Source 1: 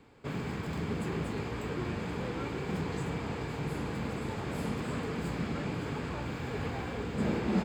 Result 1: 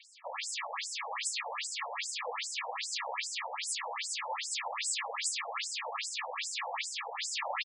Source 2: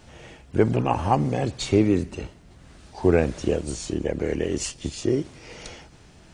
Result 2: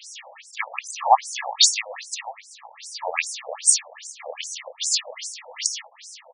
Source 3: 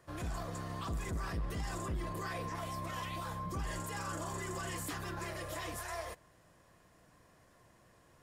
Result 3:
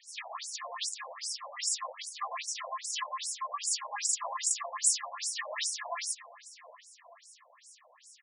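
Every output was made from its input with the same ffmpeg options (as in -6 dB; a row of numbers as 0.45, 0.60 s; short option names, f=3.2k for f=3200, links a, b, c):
-filter_complex "[0:a]acrossover=split=530[a][b];[a]acompressor=threshold=-39dB:ratio=6[c];[c][b]amix=inputs=2:normalize=0,crystalizer=i=6.5:c=0,asuperstop=centerf=1500:order=8:qfactor=4.9,asplit=2[d][e];[e]adelay=580,lowpass=f=2.2k:p=1,volume=-13dB,asplit=2[f][g];[g]adelay=580,lowpass=f=2.2k:p=1,volume=0.48,asplit=2[h][i];[i]adelay=580,lowpass=f=2.2k:p=1,volume=0.48,asplit=2[j][k];[k]adelay=580,lowpass=f=2.2k:p=1,volume=0.48,asplit=2[l][m];[m]adelay=580,lowpass=f=2.2k:p=1,volume=0.48[n];[d][f][h][j][l][n]amix=inputs=6:normalize=0,afftfilt=real='re*between(b*sr/1024,660*pow(7600/660,0.5+0.5*sin(2*PI*2.5*pts/sr))/1.41,660*pow(7600/660,0.5+0.5*sin(2*PI*2.5*pts/sr))*1.41)':imag='im*between(b*sr/1024,660*pow(7600/660,0.5+0.5*sin(2*PI*2.5*pts/sr))/1.41,660*pow(7600/660,0.5+0.5*sin(2*PI*2.5*pts/sr))*1.41)':win_size=1024:overlap=0.75,volume=6.5dB"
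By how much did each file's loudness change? 0.0, +1.5, +7.0 LU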